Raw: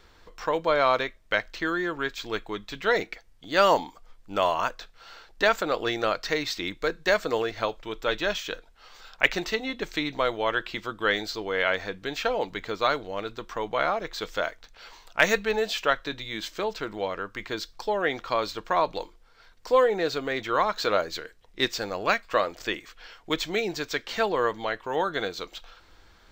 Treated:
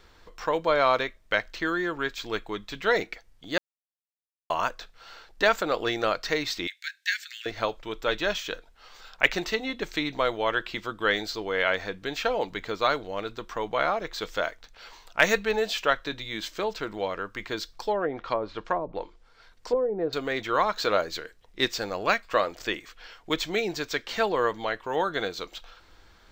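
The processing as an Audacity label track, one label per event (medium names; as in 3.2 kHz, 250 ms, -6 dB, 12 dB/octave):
3.580000	4.500000	mute
6.670000	7.460000	steep high-pass 1.6 kHz 72 dB/octave
17.910000	20.130000	low-pass that closes with the level closes to 410 Hz, closed at -19.5 dBFS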